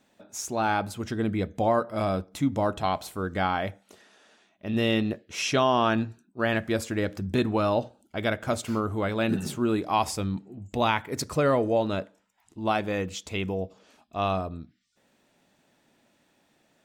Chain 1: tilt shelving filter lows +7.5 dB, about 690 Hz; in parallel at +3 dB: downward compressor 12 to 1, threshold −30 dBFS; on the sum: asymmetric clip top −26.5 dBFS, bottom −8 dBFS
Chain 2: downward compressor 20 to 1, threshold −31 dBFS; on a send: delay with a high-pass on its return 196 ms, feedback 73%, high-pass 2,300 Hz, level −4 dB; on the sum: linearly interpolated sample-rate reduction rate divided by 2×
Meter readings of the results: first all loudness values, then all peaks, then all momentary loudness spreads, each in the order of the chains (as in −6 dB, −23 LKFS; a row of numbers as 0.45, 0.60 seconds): −24.0, −36.5 LKFS; −8.5, −19.5 dBFS; 8, 8 LU